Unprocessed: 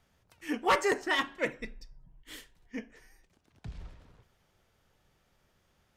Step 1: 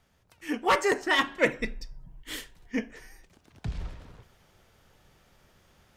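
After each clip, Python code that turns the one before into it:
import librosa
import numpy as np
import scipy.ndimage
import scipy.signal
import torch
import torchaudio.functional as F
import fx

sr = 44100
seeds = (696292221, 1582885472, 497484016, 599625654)

y = fx.rider(x, sr, range_db=10, speed_s=0.5)
y = F.gain(torch.from_numpy(y), 6.0).numpy()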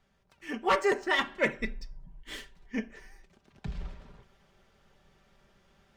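y = scipy.ndimage.median_filter(x, 3, mode='constant')
y = fx.high_shelf(y, sr, hz=7900.0, db=-9.0)
y = y + 0.53 * np.pad(y, (int(5.1 * sr / 1000.0), 0))[:len(y)]
y = F.gain(torch.from_numpy(y), -3.5).numpy()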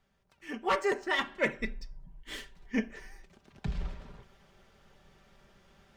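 y = fx.rider(x, sr, range_db=3, speed_s=0.5)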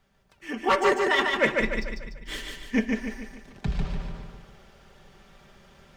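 y = fx.echo_feedback(x, sr, ms=147, feedback_pct=46, wet_db=-3.5)
y = F.gain(torch.from_numpy(y), 6.0).numpy()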